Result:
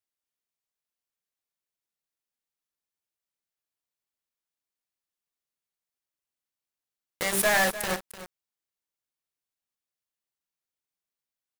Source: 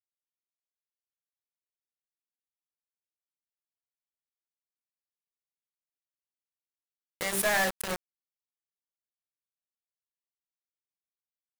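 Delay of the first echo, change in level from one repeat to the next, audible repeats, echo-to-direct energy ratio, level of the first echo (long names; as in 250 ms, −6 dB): 300 ms, repeats not evenly spaced, 1, −13.5 dB, −13.5 dB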